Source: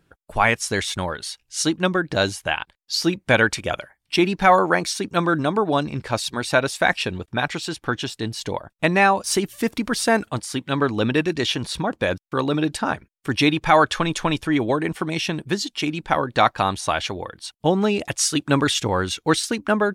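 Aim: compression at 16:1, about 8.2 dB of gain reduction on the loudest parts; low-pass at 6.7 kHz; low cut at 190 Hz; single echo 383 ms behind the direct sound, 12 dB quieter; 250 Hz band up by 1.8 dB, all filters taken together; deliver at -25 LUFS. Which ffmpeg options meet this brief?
-af "highpass=190,lowpass=6700,equalizer=f=250:t=o:g=4,acompressor=threshold=0.126:ratio=16,aecho=1:1:383:0.251"

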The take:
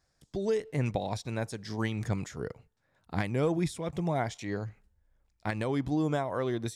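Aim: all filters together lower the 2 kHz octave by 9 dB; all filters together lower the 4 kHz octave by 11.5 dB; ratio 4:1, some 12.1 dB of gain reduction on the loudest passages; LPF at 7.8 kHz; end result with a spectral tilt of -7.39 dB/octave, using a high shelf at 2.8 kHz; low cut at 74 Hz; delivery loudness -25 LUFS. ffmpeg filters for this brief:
-af "highpass=74,lowpass=7800,equalizer=f=2000:t=o:g=-8.5,highshelf=f=2800:g=-4.5,equalizer=f=4000:t=o:g=-8,acompressor=threshold=0.01:ratio=4,volume=8.41"

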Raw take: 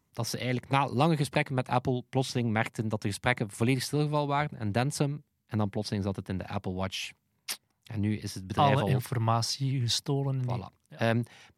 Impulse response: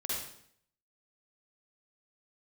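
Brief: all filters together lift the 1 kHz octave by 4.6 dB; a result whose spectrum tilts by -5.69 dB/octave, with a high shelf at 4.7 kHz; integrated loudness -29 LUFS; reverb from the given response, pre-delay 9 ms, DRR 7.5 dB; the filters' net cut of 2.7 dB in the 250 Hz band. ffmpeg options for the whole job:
-filter_complex "[0:a]equalizer=f=250:t=o:g=-4,equalizer=f=1000:t=o:g=6.5,highshelf=f=4700:g=-4.5,asplit=2[s0][s1];[1:a]atrim=start_sample=2205,adelay=9[s2];[s1][s2]afir=irnorm=-1:irlink=0,volume=0.282[s3];[s0][s3]amix=inputs=2:normalize=0,volume=0.944"

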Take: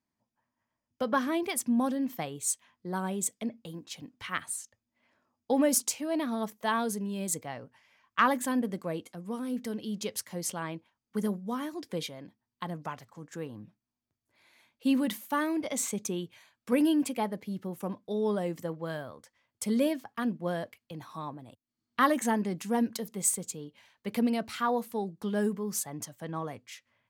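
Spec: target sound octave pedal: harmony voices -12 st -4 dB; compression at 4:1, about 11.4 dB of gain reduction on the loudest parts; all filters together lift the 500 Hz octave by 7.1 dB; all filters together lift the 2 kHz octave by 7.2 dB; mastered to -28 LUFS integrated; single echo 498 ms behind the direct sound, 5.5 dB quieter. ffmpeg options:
-filter_complex "[0:a]equalizer=f=500:t=o:g=8,equalizer=f=2000:t=o:g=8.5,acompressor=threshold=0.0355:ratio=4,aecho=1:1:498:0.531,asplit=2[s0][s1];[s1]asetrate=22050,aresample=44100,atempo=2,volume=0.631[s2];[s0][s2]amix=inputs=2:normalize=0,volume=1.58"

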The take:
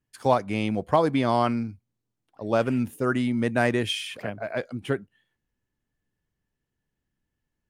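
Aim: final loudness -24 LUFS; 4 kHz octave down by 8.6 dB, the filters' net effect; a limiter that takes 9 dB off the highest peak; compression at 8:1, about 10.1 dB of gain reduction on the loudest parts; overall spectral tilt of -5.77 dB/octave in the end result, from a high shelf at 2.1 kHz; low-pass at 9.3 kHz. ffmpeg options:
-af "lowpass=9300,highshelf=f=2100:g=-5,equalizer=f=4000:t=o:g=-7,acompressor=threshold=0.0501:ratio=8,volume=3.16,alimiter=limit=0.237:level=0:latency=1"

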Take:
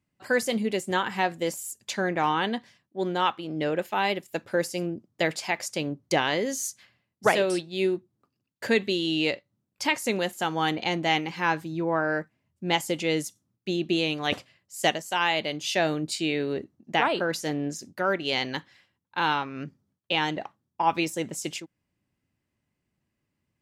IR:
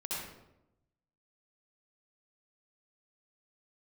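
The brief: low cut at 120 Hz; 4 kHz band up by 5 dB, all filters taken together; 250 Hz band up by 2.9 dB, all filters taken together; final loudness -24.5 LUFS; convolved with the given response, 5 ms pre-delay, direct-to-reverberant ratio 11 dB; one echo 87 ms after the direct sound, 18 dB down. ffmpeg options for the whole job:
-filter_complex "[0:a]highpass=120,equalizer=f=250:t=o:g=4.5,equalizer=f=4000:t=o:g=7,aecho=1:1:87:0.126,asplit=2[s0][s1];[1:a]atrim=start_sample=2205,adelay=5[s2];[s1][s2]afir=irnorm=-1:irlink=0,volume=0.2[s3];[s0][s3]amix=inputs=2:normalize=0,volume=1.06"

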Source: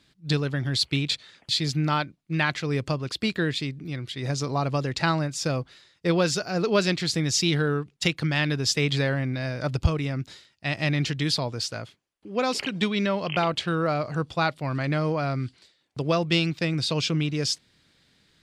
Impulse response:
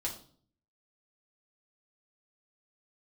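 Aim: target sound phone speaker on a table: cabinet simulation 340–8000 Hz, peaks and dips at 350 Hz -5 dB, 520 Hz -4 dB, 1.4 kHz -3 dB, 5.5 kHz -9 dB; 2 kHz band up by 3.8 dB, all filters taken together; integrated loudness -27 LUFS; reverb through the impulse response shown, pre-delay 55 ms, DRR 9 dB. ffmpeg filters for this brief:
-filter_complex "[0:a]equalizer=f=2000:t=o:g=6,asplit=2[s0][s1];[1:a]atrim=start_sample=2205,adelay=55[s2];[s1][s2]afir=irnorm=-1:irlink=0,volume=0.282[s3];[s0][s3]amix=inputs=2:normalize=0,highpass=f=340:w=0.5412,highpass=f=340:w=1.3066,equalizer=f=350:t=q:w=4:g=-5,equalizer=f=520:t=q:w=4:g=-4,equalizer=f=1400:t=q:w=4:g=-3,equalizer=f=5500:t=q:w=4:g=-9,lowpass=f=8000:w=0.5412,lowpass=f=8000:w=1.3066"

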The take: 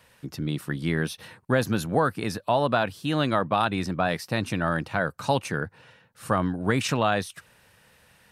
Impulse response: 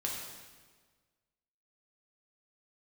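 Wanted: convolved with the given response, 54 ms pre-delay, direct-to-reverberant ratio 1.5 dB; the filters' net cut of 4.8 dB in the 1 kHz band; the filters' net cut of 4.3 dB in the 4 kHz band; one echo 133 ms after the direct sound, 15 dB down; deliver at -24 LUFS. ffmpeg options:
-filter_complex "[0:a]equalizer=f=1000:t=o:g=-6.5,equalizer=f=4000:t=o:g=-5,aecho=1:1:133:0.178,asplit=2[s0][s1];[1:a]atrim=start_sample=2205,adelay=54[s2];[s1][s2]afir=irnorm=-1:irlink=0,volume=0.596[s3];[s0][s3]amix=inputs=2:normalize=0,volume=1.19"

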